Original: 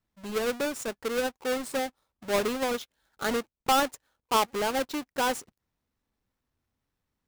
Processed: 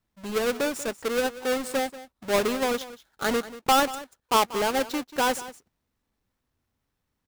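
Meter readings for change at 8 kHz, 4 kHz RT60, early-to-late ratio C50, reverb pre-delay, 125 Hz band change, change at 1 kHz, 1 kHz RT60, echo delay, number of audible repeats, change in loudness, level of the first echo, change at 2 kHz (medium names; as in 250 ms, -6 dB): +3.0 dB, no reverb, no reverb, no reverb, +3.0 dB, +3.0 dB, no reverb, 187 ms, 1, +3.0 dB, -16.0 dB, +3.0 dB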